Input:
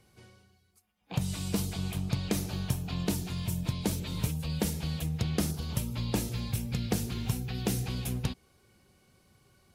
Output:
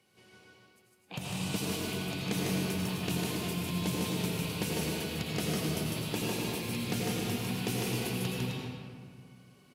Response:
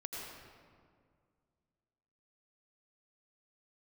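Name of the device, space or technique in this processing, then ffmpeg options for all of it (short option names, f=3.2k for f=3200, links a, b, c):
stadium PA: -filter_complex "[0:a]highpass=180,equalizer=f=2.7k:t=o:w=0.72:g=6,aecho=1:1:151.6|259.5:0.708|0.447[a];[1:a]atrim=start_sample=2205[b];[a][b]afir=irnorm=-1:irlink=0"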